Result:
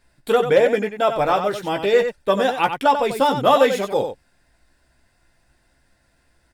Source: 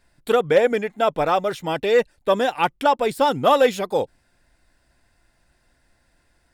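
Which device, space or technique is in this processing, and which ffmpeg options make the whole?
slapback doubling: -filter_complex "[0:a]asplit=3[a][b][c];[b]adelay=15,volume=-7dB[d];[c]adelay=92,volume=-8dB[e];[a][d][e]amix=inputs=3:normalize=0"

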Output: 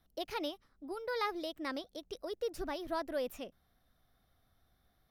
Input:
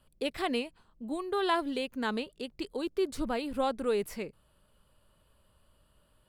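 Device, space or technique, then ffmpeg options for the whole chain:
nightcore: -af "asetrate=54243,aresample=44100,volume=-6.5dB"

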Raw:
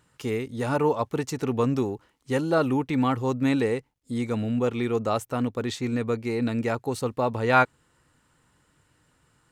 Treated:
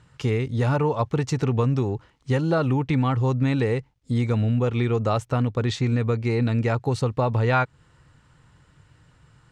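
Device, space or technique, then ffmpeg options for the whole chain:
jukebox: -af "lowpass=6k,lowshelf=f=180:t=q:w=1.5:g=6.5,acompressor=threshold=-24dB:ratio=4,volume=5.5dB"

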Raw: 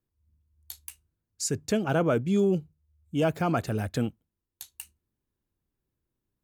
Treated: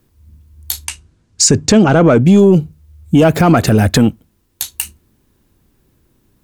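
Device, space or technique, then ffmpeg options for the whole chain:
mastering chain: -filter_complex "[0:a]asettb=1/sr,asplit=3[a][b][c];[a]atrim=end=0.854[d];[b]atrim=start=0.85:end=2.25,asetpts=PTS-STARTPTS,afade=t=in:d=0.004:c=qsin,afade=t=out:st=1.396:d=0.004:c=qsin,lowpass=f=8.2k:w=0.5412,lowpass=f=8.2k:w=1.3066[e];[c]atrim=start=2.246[f];[d][e]acrossfade=d=0.004:c1=hsin:c2=qsin[g];[g][f]acrossfade=d=0.004:c1=qsin:c2=hsin,equalizer=f=240:t=o:w=0.77:g=3,acompressor=threshold=-29dB:ratio=2,asoftclip=type=tanh:threshold=-20.5dB,alimiter=level_in=26.5dB:limit=-1dB:release=50:level=0:latency=1,volume=-1dB"

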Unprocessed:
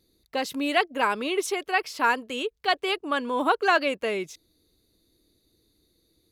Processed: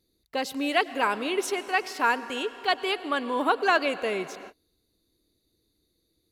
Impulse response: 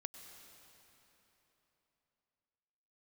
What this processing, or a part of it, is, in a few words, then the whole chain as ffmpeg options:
keyed gated reverb: -filter_complex "[0:a]asplit=3[a][b][c];[1:a]atrim=start_sample=2205[d];[b][d]afir=irnorm=-1:irlink=0[e];[c]apad=whole_len=278694[f];[e][f]sidechaingate=range=-42dB:threshold=-59dB:ratio=16:detection=peak,volume=1dB[g];[a][g]amix=inputs=2:normalize=0,volume=-5.5dB"

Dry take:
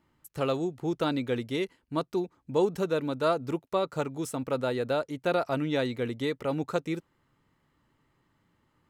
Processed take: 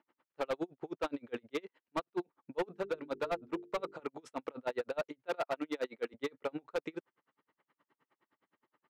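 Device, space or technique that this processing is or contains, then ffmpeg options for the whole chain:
helicopter radio: -filter_complex "[0:a]highpass=390,lowpass=2.7k,aeval=exprs='val(0)*pow(10,-39*(0.5-0.5*cos(2*PI*9.6*n/s))/20)':c=same,asoftclip=type=hard:threshold=-32.5dB,asettb=1/sr,asplit=3[a][b][c];[a]atrim=end=2.644[d];[b]atrim=start=2.64:end=4,asetpts=PTS-STARTPTS,afade=t=in:d=0.004:c=qsin,afade=t=out:st=1.356:d=0.004:c=qsin,bandreject=f=50:t=h:w=6,bandreject=f=100:t=h:w=6,bandreject=f=150:t=h:w=6,bandreject=f=200:t=h:w=6,bandreject=f=250:t=h:w=6,bandreject=f=300:t=h:w=6,bandreject=f=350:t=h:w=6,bandreject=f=400:t=h:w=6,bandreject=f=450:t=h:w=6[e];[c]atrim=start=3.996[f];[d][e]acrossfade=d=0.004:c1=hsin:c2=qsin[g];[g][f]acrossfade=d=0.004:c1=qsin:c2=hsin,asettb=1/sr,asplit=3[h][i][j];[h]atrim=end=5.274[k];[i]atrim=start=5.27:end=6.14,asetpts=PTS-STARTPTS,afade=t=in:d=0.004:c=qsin,afade=t=out:st=0.866:d=0.004:c=qsin,highpass=200[l];[j]atrim=start=6.136[m];[k][l]acrossfade=d=0.004:c1=hsin:c2=qsin[n];[n][m]acrossfade=d=0.004:c1=qsin:c2=hsin,volume=4dB"

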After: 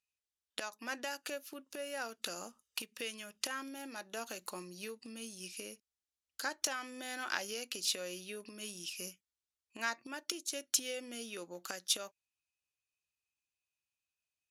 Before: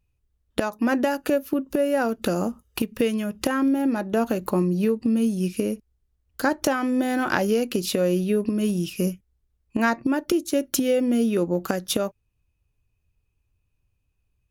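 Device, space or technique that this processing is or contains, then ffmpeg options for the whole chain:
piezo pickup straight into a mixer: -filter_complex "[0:a]lowpass=6.4k,aderivative,asettb=1/sr,asplit=3[a][b][c];[a]atrim=end=3.574[d];[b]atrim=start=3.57:end=5.12,asetpts=PTS-STARTPTS,afade=t=in:d=0.004:c=qsin,afade=t=out:st=1.546:d=0.004:c=qsin,bass=f=250:g=0,treble=f=4k:g=3[e];[c]atrim=start=5.116[f];[d][e]acrossfade=d=0.004:c1=hsin:c2=qsin[g];[g][f]acrossfade=d=0.004:c1=qsin:c2=hsin,volume=1.5dB"

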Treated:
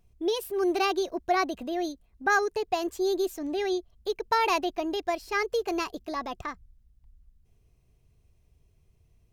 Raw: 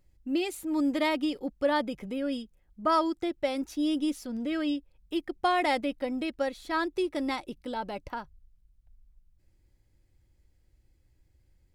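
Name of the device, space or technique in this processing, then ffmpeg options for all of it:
nightcore: -af "asetrate=55566,aresample=44100,volume=1.5dB"

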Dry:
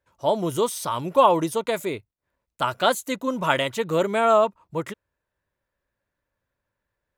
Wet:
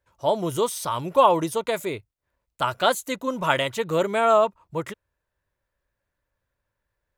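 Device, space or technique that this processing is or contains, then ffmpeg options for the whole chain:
low shelf boost with a cut just above: -af "lowshelf=f=72:g=7,equalizer=f=230:t=o:w=1.1:g=-3.5"

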